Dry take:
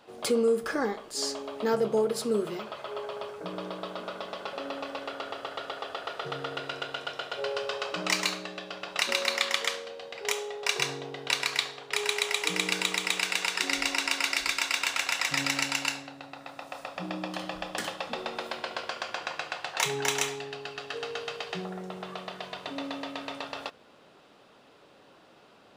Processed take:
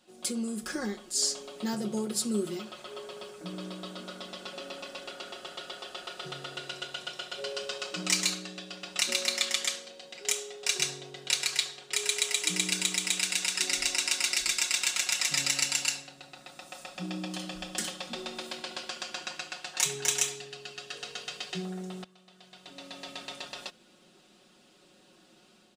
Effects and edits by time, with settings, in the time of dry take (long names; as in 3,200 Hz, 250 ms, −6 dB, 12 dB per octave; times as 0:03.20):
0:22.04–0:23.10: fade in quadratic, from −19 dB
whole clip: graphic EQ with 10 bands 125 Hz −6 dB, 250 Hz +4 dB, 500 Hz −7 dB, 1,000 Hz −9 dB, 2,000 Hz −4 dB, 8,000 Hz +8 dB; automatic gain control gain up to 5 dB; comb filter 5.5 ms, depth 73%; level −6 dB